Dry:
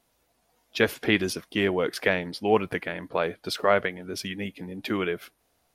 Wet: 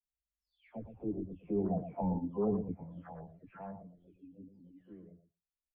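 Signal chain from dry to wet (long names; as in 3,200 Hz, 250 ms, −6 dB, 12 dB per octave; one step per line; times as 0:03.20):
every frequency bin delayed by itself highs early, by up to 675 ms
source passing by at 0:02.06, 8 m/s, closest 4.6 metres
treble cut that deepens with the level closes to 740 Hz, closed at −30.5 dBFS
low-pass filter 1,700 Hz 6 dB per octave
parametric band 370 Hz −12 dB 0.55 octaves
repeating echo 116 ms, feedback 15%, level −6.5 dB
formants moved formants +5 semitones
spectral tilt −4 dB per octave
every bin expanded away from the loudest bin 1.5 to 1
level −5 dB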